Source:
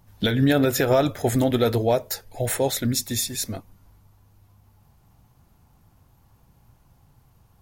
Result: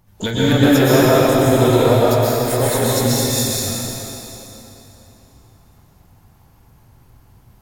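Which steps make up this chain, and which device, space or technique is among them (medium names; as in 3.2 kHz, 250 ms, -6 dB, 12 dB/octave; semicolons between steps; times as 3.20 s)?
shimmer-style reverb (harmony voices +12 st -12 dB; reverberation RT60 3.3 s, pre-delay 111 ms, DRR -8 dB); trim -1 dB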